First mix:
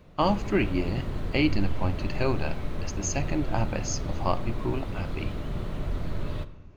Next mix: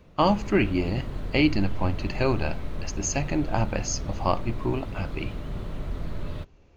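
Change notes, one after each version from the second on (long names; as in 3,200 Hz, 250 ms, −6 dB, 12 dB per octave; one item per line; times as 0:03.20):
speech +3.5 dB
reverb: off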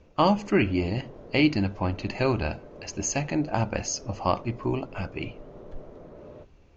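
background: add resonant band-pass 500 Hz, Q 1.7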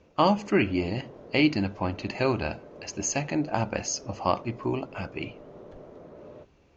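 master: add high-pass filter 130 Hz 6 dB per octave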